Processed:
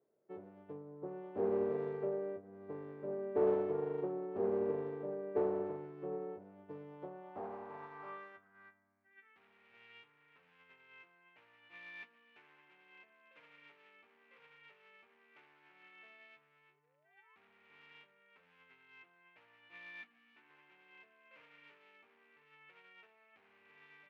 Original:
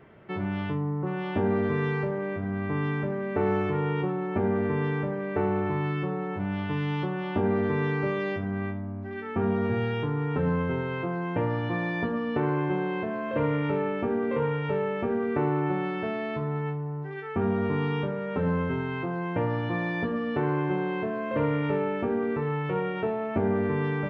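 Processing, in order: 16.68–17.36 painted sound rise 350–1100 Hz -38 dBFS; 20.01–20.5 ten-band EQ 125 Hz -11 dB, 250 Hz +10 dB, 500 Hz -12 dB; hard clip -25.5 dBFS, distortion -12 dB; band-pass sweep 480 Hz -> 2500 Hz, 6.83–9.4; upward expander 2.5:1, over -47 dBFS; gain +3.5 dB

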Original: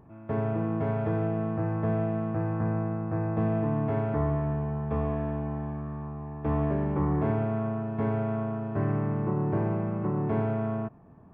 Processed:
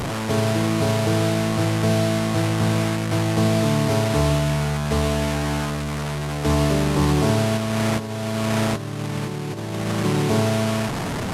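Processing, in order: delta modulation 64 kbps, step -27.5 dBFS; 7.57–10 negative-ratio compressor -31 dBFS, ratio -0.5; gain +7.5 dB

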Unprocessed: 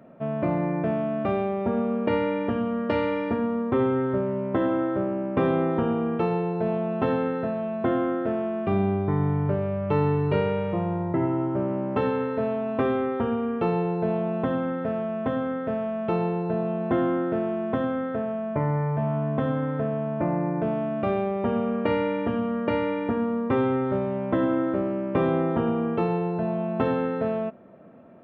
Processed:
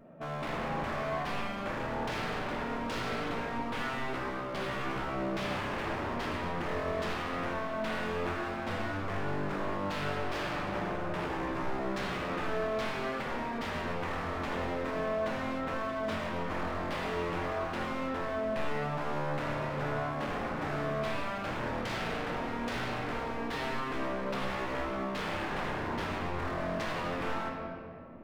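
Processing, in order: wavefolder -28 dBFS; vibrato 0.85 Hz 18 cents; reverb RT60 2.4 s, pre-delay 7 ms, DRR -0.5 dB; gain -5.5 dB

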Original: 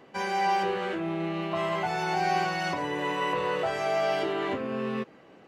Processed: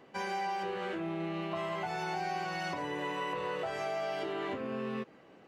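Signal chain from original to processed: compressor, threshold -28 dBFS, peak gain reduction 6.5 dB; gain -4 dB

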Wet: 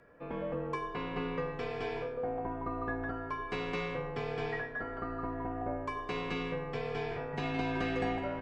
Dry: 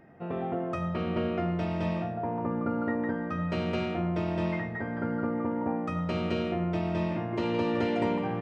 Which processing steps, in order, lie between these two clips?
HPF 530 Hz 12 dB/oct; frequency shift -200 Hz

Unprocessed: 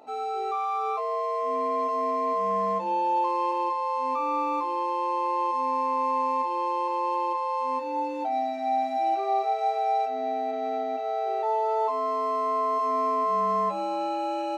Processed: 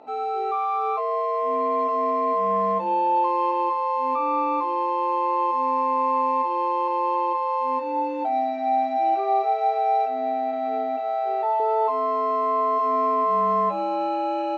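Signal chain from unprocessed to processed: Bessel low-pass 2900 Hz, order 2; 10.07–11.6 de-hum 146.2 Hz, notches 4; gain +4 dB

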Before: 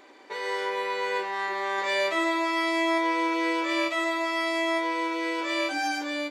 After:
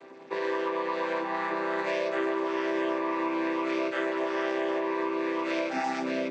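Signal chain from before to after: chord vocoder major triad, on C3; compressor, threshold -31 dBFS, peak gain reduction 10 dB; gain +5 dB

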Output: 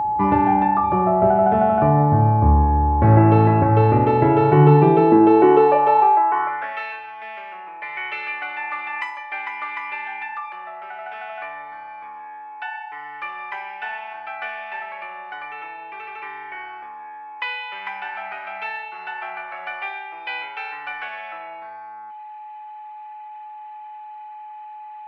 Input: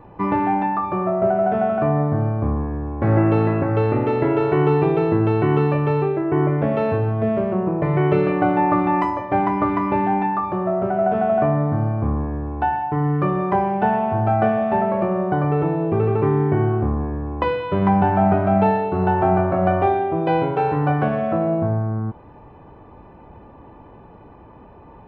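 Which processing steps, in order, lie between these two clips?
whine 850 Hz -20 dBFS; high-pass sweep 70 Hz -> 2200 Hz, 4.08–6.91; gain +1 dB

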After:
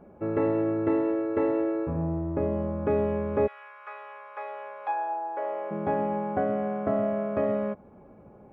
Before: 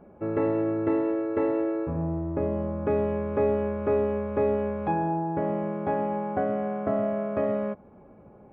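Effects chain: 3.46–5.7 HPF 1300 Hz -> 460 Hz 24 dB/oct

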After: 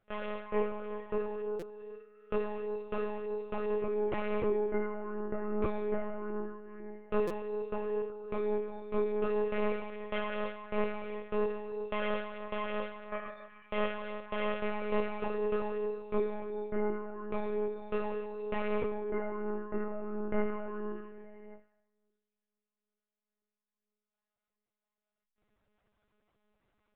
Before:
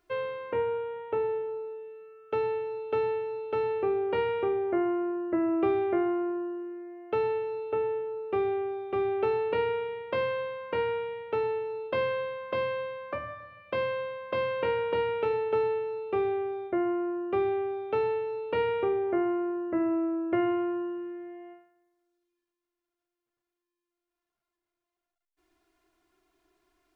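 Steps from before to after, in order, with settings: dynamic EQ 330 Hz, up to -3 dB, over -38 dBFS, Q 4.1; flange 0.33 Hz, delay 9.6 ms, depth 8.6 ms, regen +30%; monotone LPC vocoder at 8 kHz 210 Hz; stuck buffer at 1.59/7.27, samples 256, times 5

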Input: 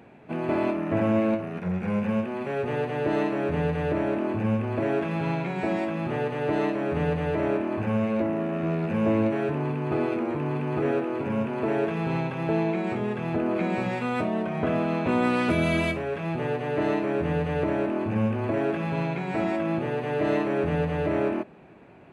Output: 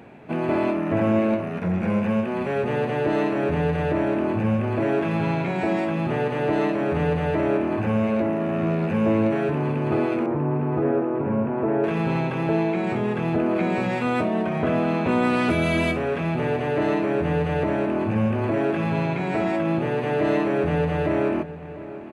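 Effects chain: 10.26–11.84 LPF 1300 Hz 12 dB/oct; in parallel at -1.5 dB: limiter -24 dBFS, peak gain reduction 11 dB; on the sum: outdoor echo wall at 120 m, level -14 dB

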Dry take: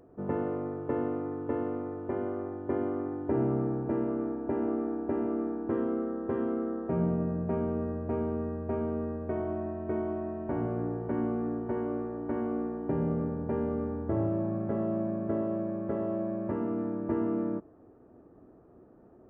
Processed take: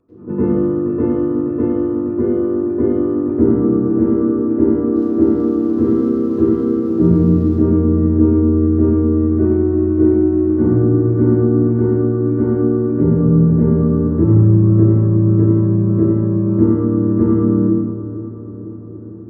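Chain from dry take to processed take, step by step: 4.85–7.49 crackle 140/s -40 dBFS; darkening echo 0.475 s, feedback 63%, low-pass 1800 Hz, level -12 dB; reverb RT60 1.2 s, pre-delay 85 ms, DRR -14.5 dB; gain -13 dB

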